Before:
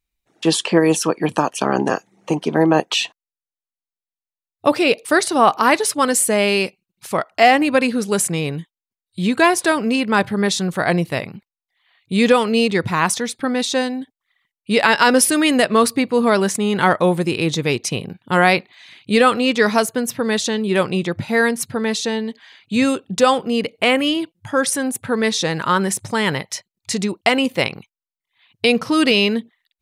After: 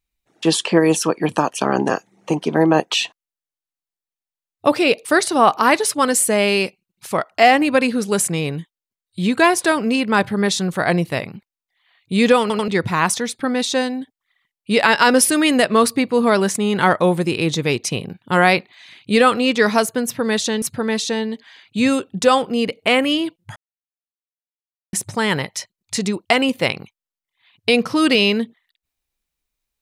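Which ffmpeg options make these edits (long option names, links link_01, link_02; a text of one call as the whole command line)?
ffmpeg -i in.wav -filter_complex "[0:a]asplit=7[link_01][link_02][link_03][link_04][link_05][link_06][link_07];[link_01]atrim=end=12.502[link_08];[link_02]atrim=start=12.408:end=12.502[link_09];[link_03]atrim=start=12.408:end=12.502[link_10];[link_04]atrim=start=12.678:end=20.622[link_11];[link_05]atrim=start=21.578:end=24.52,asetpts=PTS-STARTPTS,afade=type=out:start_time=2.938:duration=0.004:curve=hsin[link_12];[link_06]atrim=start=24.52:end=25.89,asetpts=PTS-STARTPTS,volume=0[link_13];[link_07]atrim=start=25.89,asetpts=PTS-STARTPTS,afade=type=in:duration=0.004:curve=hsin[link_14];[link_08][link_09]acrossfade=duration=0.004:curve1=hsin:curve2=hsin[link_15];[link_15][link_10]acrossfade=duration=0.004:curve1=hsin:curve2=hsin[link_16];[link_16][link_11]acrossfade=duration=0.004:curve1=hsin:curve2=hsin[link_17];[link_12][link_13][link_14]concat=n=3:v=0:a=1[link_18];[link_17][link_18]acrossfade=duration=0.004:curve1=hsin:curve2=hsin" out.wav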